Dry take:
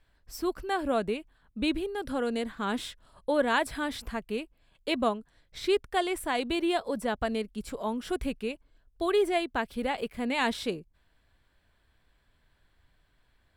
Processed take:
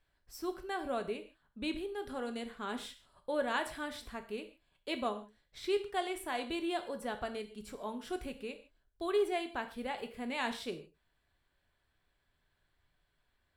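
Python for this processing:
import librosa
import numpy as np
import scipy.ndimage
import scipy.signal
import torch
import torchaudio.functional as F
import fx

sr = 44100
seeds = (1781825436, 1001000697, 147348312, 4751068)

y = fx.low_shelf(x, sr, hz=240.0, db=-3.5)
y = fx.rev_gated(y, sr, seeds[0], gate_ms=180, shape='falling', drr_db=7.0)
y = y * librosa.db_to_amplitude(-8.0)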